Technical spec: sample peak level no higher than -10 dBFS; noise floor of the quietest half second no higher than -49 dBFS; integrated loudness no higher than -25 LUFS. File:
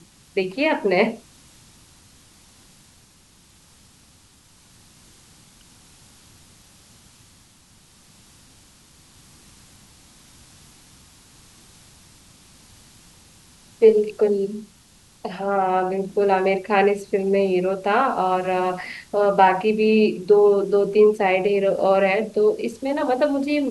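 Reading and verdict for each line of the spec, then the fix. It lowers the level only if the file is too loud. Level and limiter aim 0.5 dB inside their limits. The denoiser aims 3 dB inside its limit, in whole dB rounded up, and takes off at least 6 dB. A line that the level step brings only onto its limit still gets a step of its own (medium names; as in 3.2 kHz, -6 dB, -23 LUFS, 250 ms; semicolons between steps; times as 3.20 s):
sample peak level -4.0 dBFS: fail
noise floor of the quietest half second -54 dBFS: pass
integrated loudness -20.0 LUFS: fail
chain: trim -5.5 dB; peak limiter -10.5 dBFS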